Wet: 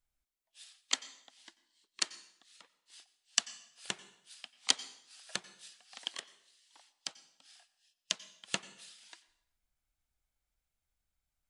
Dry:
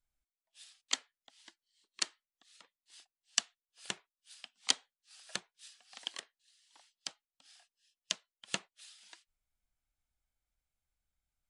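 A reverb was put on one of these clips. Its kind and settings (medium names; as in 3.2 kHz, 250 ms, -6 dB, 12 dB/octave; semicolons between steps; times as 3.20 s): plate-style reverb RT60 0.72 s, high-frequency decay 0.9×, pre-delay 80 ms, DRR 16.5 dB; trim +1.5 dB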